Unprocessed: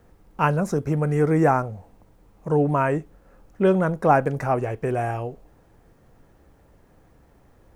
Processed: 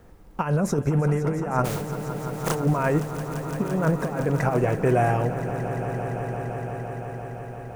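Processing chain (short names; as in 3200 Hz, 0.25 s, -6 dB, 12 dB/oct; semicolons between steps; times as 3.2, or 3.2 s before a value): 1.64–2.54 spectral contrast lowered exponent 0.42; negative-ratio compressor -23 dBFS, ratio -0.5; swelling echo 0.171 s, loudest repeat 5, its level -14 dB; gain +1 dB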